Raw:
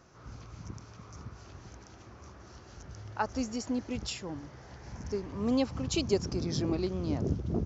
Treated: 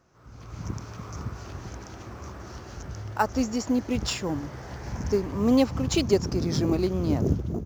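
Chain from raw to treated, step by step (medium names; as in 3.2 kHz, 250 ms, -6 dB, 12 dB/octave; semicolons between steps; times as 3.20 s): in parallel at -11 dB: sample-rate reducer 6.5 kHz, jitter 0%; on the sum: level rider gain up to 16 dB; trim -7.5 dB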